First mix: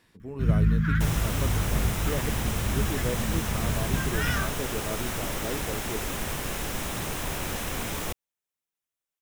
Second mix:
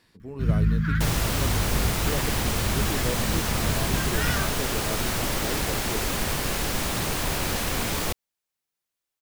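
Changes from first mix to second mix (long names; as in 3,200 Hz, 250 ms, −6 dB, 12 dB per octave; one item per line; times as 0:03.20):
second sound +4.5 dB
master: add parametric band 4,500 Hz +7.5 dB 0.3 octaves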